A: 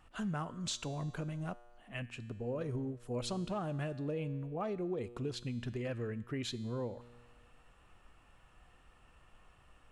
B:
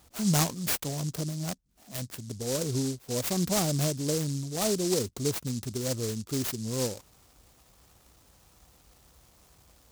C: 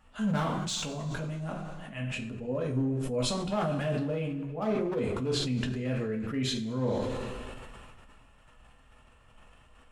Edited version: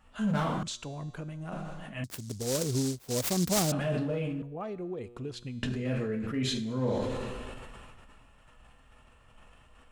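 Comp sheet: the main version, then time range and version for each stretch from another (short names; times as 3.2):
C
0.63–1.52 from A
2.04–3.72 from B
4.42–5.63 from A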